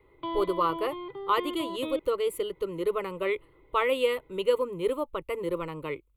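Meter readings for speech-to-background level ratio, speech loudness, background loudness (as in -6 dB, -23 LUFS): 7.0 dB, -30.0 LUFS, -37.0 LUFS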